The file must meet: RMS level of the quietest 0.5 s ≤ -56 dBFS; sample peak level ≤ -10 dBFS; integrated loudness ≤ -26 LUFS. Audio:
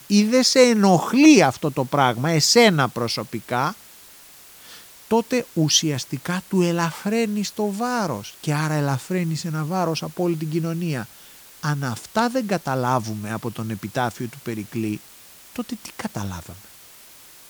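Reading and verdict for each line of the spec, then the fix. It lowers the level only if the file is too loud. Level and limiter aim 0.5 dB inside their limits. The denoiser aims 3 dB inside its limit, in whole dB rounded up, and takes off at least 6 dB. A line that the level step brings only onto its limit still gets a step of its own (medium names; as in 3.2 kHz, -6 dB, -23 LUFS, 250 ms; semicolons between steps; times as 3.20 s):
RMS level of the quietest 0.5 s -46 dBFS: fail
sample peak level -3.0 dBFS: fail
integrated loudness -21.0 LUFS: fail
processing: noise reduction 8 dB, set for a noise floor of -46 dBFS; trim -5.5 dB; peak limiter -10.5 dBFS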